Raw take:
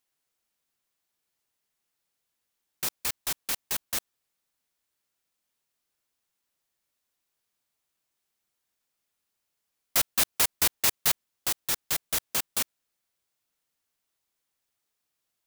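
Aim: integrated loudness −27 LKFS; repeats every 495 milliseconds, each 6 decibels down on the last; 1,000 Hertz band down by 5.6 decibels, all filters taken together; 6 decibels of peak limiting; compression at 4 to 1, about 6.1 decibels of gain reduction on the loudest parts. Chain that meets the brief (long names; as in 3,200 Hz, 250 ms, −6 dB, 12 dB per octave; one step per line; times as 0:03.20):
parametric band 1,000 Hz −7.5 dB
downward compressor 4 to 1, threshold −26 dBFS
brickwall limiter −17.5 dBFS
repeating echo 495 ms, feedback 50%, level −6 dB
level +5 dB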